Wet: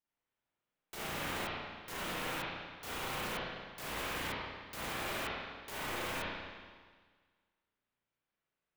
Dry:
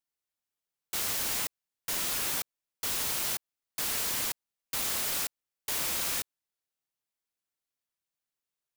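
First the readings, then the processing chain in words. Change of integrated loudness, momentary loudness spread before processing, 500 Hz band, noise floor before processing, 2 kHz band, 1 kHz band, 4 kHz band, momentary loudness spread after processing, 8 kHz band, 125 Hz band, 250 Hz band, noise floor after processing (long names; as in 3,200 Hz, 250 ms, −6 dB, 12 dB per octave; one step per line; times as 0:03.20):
−9.5 dB, 10 LU, +2.5 dB, below −85 dBFS, −0.5 dB, +1.5 dB, −7.0 dB, 7 LU, −16.5 dB, +2.5 dB, +2.5 dB, below −85 dBFS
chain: high-shelf EQ 3,400 Hz −10.5 dB
brickwall limiter −34.5 dBFS, peak gain reduction 8.5 dB
spring reverb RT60 1.6 s, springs 34/48 ms, chirp 60 ms, DRR −9.5 dB
level −1.5 dB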